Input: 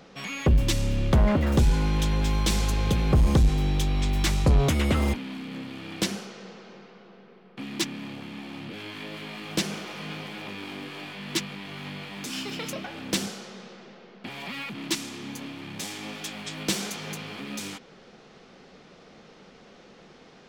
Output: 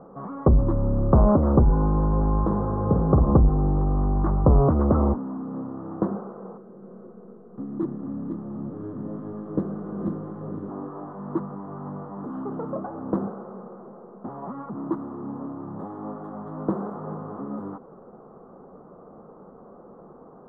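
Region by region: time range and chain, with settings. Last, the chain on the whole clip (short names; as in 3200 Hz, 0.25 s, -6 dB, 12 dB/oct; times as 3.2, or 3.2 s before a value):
2.44–3.32 HPF 63 Hz + hard clip -14.5 dBFS + doubler 49 ms -6.5 dB
6.57–10.7 regenerating reverse delay 0.251 s, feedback 46%, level -1 dB + bell 930 Hz -12 dB 1.4 oct
whole clip: elliptic low-pass 1200 Hz, stop band 50 dB; low shelf 170 Hz -4 dB; gain +6.5 dB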